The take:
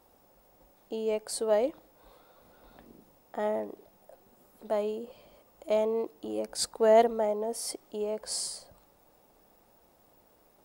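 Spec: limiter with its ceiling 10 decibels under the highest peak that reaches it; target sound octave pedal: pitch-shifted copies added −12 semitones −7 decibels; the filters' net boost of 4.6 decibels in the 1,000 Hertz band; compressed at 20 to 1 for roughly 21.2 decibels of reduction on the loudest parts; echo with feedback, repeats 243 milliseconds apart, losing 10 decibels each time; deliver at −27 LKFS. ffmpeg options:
ffmpeg -i in.wav -filter_complex "[0:a]equalizer=frequency=1000:width_type=o:gain=7.5,acompressor=threshold=-34dB:ratio=20,alimiter=level_in=8dB:limit=-24dB:level=0:latency=1,volume=-8dB,aecho=1:1:243|486|729|972:0.316|0.101|0.0324|0.0104,asplit=2[link_01][link_02];[link_02]asetrate=22050,aresample=44100,atempo=2,volume=-7dB[link_03];[link_01][link_03]amix=inputs=2:normalize=0,volume=14.5dB" out.wav

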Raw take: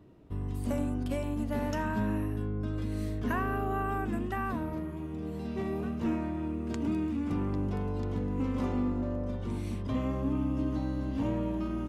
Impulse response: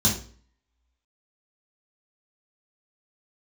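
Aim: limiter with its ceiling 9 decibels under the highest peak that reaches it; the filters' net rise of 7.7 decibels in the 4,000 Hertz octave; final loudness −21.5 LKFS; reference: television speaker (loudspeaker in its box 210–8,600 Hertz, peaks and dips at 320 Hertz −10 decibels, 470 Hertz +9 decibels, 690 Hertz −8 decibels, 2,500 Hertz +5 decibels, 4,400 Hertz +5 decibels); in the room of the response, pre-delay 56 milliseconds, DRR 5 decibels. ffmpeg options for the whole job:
-filter_complex "[0:a]equalizer=frequency=4000:width_type=o:gain=7,alimiter=level_in=6dB:limit=-24dB:level=0:latency=1,volume=-6dB,asplit=2[link_01][link_02];[1:a]atrim=start_sample=2205,adelay=56[link_03];[link_02][link_03]afir=irnorm=-1:irlink=0,volume=-17dB[link_04];[link_01][link_04]amix=inputs=2:normalize=0,highpass=frequency=210:width=0.5412,highpass=frequency=210:width=1.3066,equalizer=frequency=320:width_type=q:width=4:gain=-10,equalizer=frequency=470:width_type=q:width=4:gain=9,equalizer=frequency=690:width_type=q:width=4:gain=-8,equalizer=frequency=2500:width_type=q:width=4:gain=5,equalizer=frequency=4400:width_type=q:width=4:gain=5,lowpass=frequency=8600:width=0.5412,lowpass=frequency=8600:width=1.3066,volume=16dB"

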